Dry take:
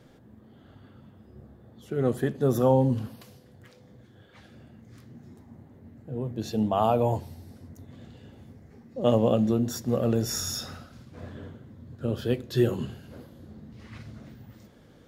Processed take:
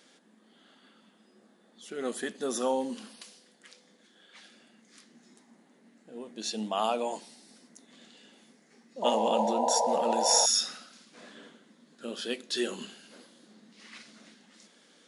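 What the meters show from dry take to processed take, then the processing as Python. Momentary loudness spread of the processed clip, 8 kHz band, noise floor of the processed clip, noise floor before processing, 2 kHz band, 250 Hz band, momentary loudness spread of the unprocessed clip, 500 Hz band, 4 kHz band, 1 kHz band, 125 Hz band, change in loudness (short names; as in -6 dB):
21 LU, +8.5 dB, -63 dBFS, -55 dBFS, +2.0 dB, -9.0 dB, 22 LU, -4.5 dB, +7.5 dB, +2.0 dB, under -25 dB, -2.5 dB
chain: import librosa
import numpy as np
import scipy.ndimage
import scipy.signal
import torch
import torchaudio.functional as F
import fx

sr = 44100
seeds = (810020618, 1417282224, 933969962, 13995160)

y = fx.brickwall_bandpass(x, sr, low_hz=170.0, high_hz=11000.0)
y = fx.tilt_shelf(y, sr, db=-9.5, hz=1500.0)
y = fx.spec_paint(y, sr, seeds[0], shape='noise', start_s=9.02, length_s=1.44, low_hz=450.0, high_hz=1000.0, level_db=-28.0)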